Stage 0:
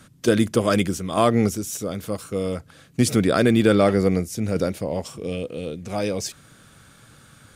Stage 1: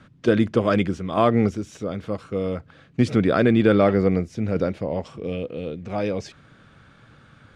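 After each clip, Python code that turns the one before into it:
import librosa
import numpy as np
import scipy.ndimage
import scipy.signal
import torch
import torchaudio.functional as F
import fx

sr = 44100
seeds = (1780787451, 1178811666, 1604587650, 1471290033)

y = scipy.signal.sosfilt(scipy.signal.butter(2, 2900.0, 'lowpass', fs=sr, output='sos'), x)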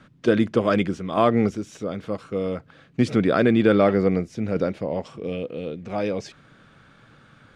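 y = fx.peak_eq(x, sr, hz=75.0, db=-7.5, octaves=1.1)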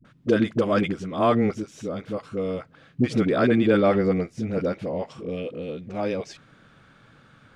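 y = fx.dispersion(x, sr, late='highs', ms=50.0, hz=440.0)
y = F.gain(torch.from_numpy(y), -1.5).numpy()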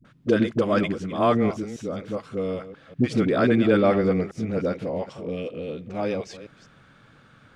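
y = fx.reverse_delay(x, sr, ms=196, wet_db=-14)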